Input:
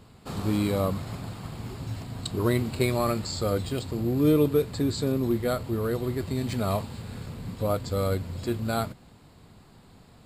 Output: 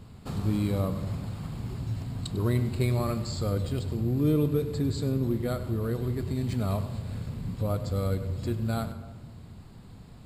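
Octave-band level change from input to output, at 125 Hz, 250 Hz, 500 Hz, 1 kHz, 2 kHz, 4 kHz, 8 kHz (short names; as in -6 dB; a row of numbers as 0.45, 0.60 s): +2.0, -2.5, -5.0, -6.0, -6.0, -5.5, -6.0 dB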